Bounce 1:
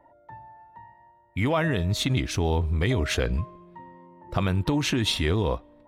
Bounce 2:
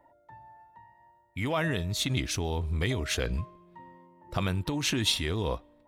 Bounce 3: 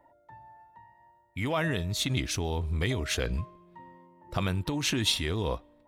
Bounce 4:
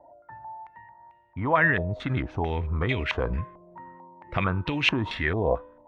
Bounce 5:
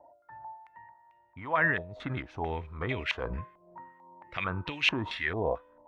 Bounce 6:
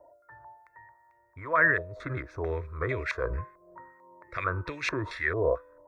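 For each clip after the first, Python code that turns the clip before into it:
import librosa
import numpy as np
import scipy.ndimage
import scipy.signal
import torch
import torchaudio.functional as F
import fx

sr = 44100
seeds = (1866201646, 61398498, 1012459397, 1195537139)

y1 = fx.high_shelf(x, sr, hz=3200.0, db=8.5)
y1 = y1 * (1.0 - 0.29 / 2.0 + 0.29 / 2.0 * np.cos(2.0 * np.pi * 1.8 * (np.arange(len(y1)) / sr)))
y1 = y1 * 10.0 ** (-4.5 / 20.0)
y2 = y1
y3 = fx.comb_fb(y2, sr, f0_hz=500.0, decay_s=0.65, harmonics='all', damping=0.0, mix_pct=50)
y3 = fx.filter_held_lowpass(y3, sr, hz=4.5, low_hz=700.0, high_hz=2600.0)
y3 = y3 * 10.0 ** (8.0 / 20.0)
y4 = fx.low_shelf(y3, sr, hz=430.0, db=-7.5)
y4 = fx.harmonic_tremolo(y4, sr, hz=2.4, depth_pct=70, crossover_hz=1700.0)
y5 = fx.fixed_phaser(y4, sr, hz=810.0, stages=6)
y5 = y5 * 10.0 ** (5.5 / 20.0)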